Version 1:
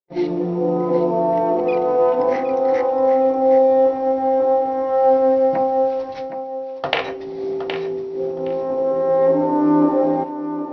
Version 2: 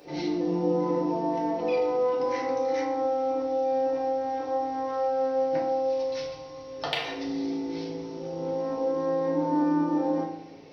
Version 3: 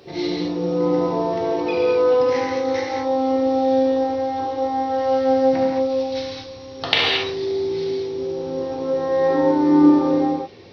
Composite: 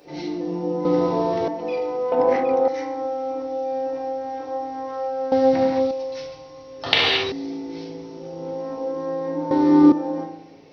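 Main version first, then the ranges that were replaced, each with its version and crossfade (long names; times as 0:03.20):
2
0:00.85–0:01.48: punch in from 3
0:02.12–0:02.68: punch in from 1
0:05.32–0:05.91: punch in from 3
0:06.86–0:07.32: punch in from 3
0:09.51–0:09.92: punch in from 3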